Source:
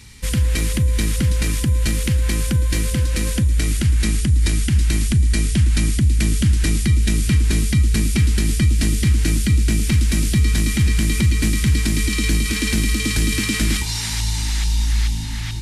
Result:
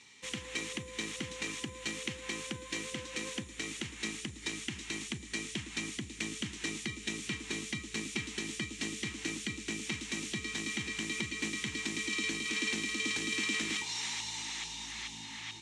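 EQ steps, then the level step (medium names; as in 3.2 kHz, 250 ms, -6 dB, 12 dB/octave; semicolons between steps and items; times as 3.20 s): cabinet simulation 420–6900 Hz, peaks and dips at 620 Hz -10 dB, 1.5 kHz -9 dB, 4.8 kHz -10 dB; -7.0 dB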